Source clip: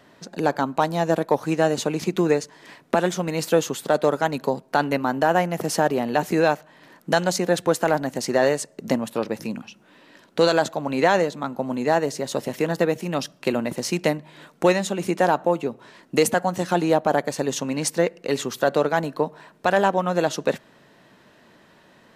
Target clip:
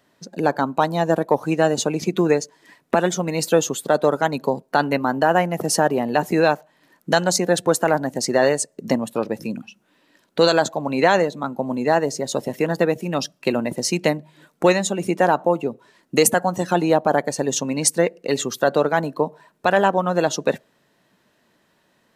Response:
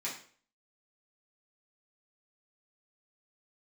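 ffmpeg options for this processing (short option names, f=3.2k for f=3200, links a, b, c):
-af "afftdn=nr=12:nf=-36,highshelf=f=6.2k:g=10,volume=2dB"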